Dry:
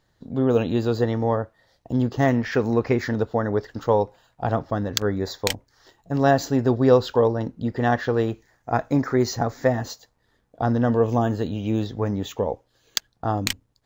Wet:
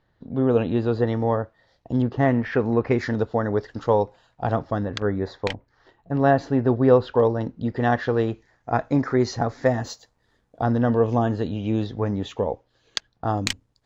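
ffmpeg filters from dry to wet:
-af "asetnsamples=n=441:p=0,asendcmd='1.07 lowpass f 5000;2.02 lowpass f 2600;2.91 lowpass f 6000;4.85 lowpass f 2500;7.2 lowpass f 4900;9.66 lowpass f 10000;10.63 lowpass f 4700;13.27 lowpass f 8800',lowpass=2.9k"

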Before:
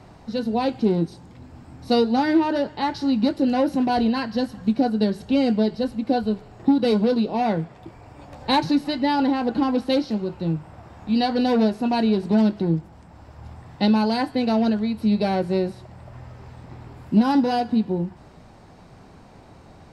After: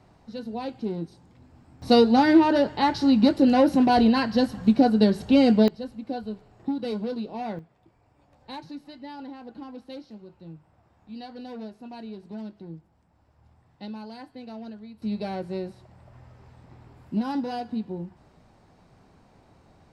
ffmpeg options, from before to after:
-af "asetnsamples=n=441:p=0,asendcmd='1.82 volume volume 2dB;5.68 volume volume -10.5dB;7.59 volume volume -19dB;15.02 volume volume -9.5dB',volume=-10dB"

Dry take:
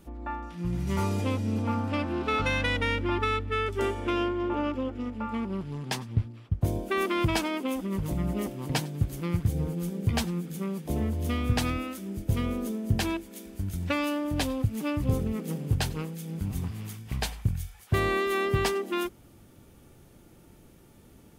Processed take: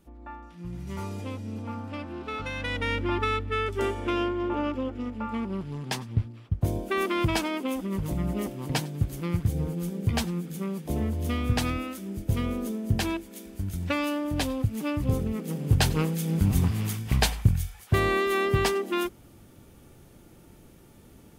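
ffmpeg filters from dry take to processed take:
-af "volume=9dB,afade=t=in:st=2.54:d=0.45:silence=0.421697,afade=t=in:st=15.53:d=0.55:silence=0.375837,afade=t=out:st=16.98:d=1:silence=0.446684"

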